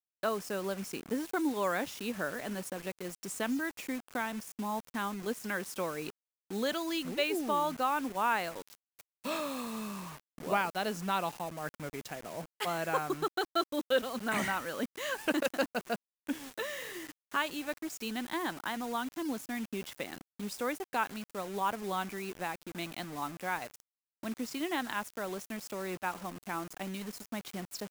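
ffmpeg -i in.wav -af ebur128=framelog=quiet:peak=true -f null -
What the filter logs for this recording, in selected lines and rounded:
Integrated loudness:
  I:         -35.5 LUFS
  Threshold: -45.7 LUFS
Loudness range:
  LRA:         4.7 LU
  Threshold: -55.6 LUFS
  LRA low:   -37.9 LUFS
  LRA high:  -33.2 LUFS
True peak:
  Peak:      -16.0 dBFS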